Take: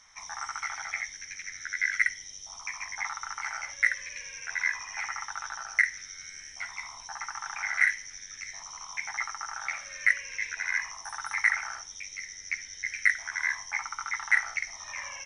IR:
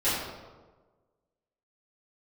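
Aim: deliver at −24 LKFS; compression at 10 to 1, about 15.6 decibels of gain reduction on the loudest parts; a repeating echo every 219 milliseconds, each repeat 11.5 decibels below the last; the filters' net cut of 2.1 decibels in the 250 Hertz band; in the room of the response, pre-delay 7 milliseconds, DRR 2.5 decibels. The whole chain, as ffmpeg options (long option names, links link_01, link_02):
-filter_complex "[0:a]equalizer=frequency=250:width_type=o:gain=-3,acompressor=threshold=-34dB:ratio=10,aecho=1:1:219|438|657:0.266|0.0718|0.0194,asplit=2[link_01][link_02];[1:a]atrim=start_sample=2205,adelay=7[link_03];[link_02][link_03]afir=irnorm=-1:irlink=0,volume=-15dB[link_04];[link_01][link_04]amix=inputs=2:normalize=0,volume=13dB"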